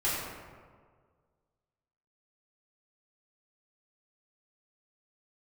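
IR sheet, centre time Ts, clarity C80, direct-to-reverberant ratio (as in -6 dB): 99 ms, 1.0 dB, -10.0 dB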